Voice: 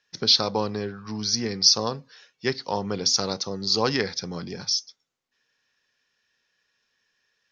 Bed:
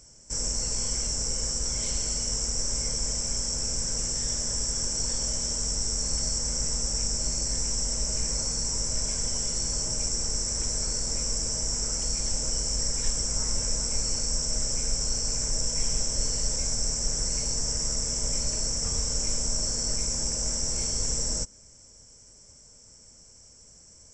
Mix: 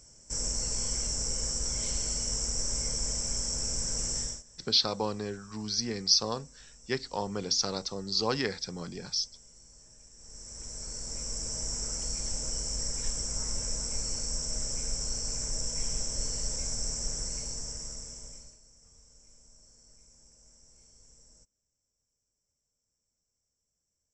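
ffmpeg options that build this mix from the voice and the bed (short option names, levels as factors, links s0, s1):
-filter_complex "[0:a]adelay=4450,volume=0.501[s0];[1:a]volume=7.94,afade=t=out:st=4.19:d=0.24:silence=0.0668344,afade=t=in:st=10.15:d=1.47:silence=0.0891251,afade=t=out:st=17.01:d=1.58:silence=0.0562341[s1];[s0][s1]amix=inputs=2:normalize=0"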